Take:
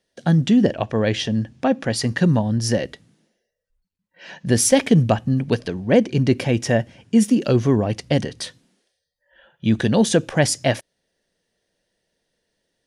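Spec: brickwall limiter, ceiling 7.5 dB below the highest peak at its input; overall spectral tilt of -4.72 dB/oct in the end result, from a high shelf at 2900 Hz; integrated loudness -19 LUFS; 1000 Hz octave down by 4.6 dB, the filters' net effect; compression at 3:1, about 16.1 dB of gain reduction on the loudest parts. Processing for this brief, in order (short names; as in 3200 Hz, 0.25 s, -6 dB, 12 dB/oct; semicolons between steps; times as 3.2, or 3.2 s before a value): bell 1000 Hz -8 dB; high shelf 2900 Hz +7.5 dB; compressor 3:1, threshold -33 dBFS; gain +15 dB; limiter -8.5 dBFS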